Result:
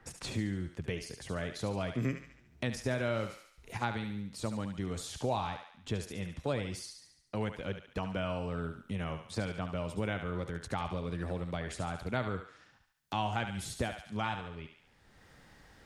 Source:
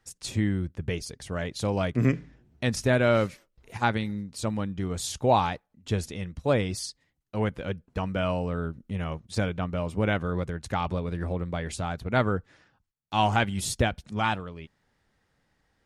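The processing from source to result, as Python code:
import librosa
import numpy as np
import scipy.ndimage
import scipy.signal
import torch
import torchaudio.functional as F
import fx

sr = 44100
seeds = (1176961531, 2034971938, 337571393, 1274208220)

y = fx.echo_thinned(x, sr, ms=71, feedback_pct=46, hz=700.0, wet_db=-7.0)
y = fx.band_squash(y, sr, depth_pct=70)
y = y * librosa.db_to_amplitude(-8.5)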